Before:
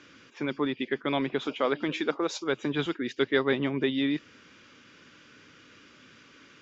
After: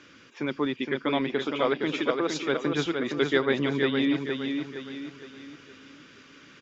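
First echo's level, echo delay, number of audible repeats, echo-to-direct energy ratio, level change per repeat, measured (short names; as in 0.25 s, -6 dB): -5.0 dB, 0.465 s, 4, -4.0 dB, -7.5 dB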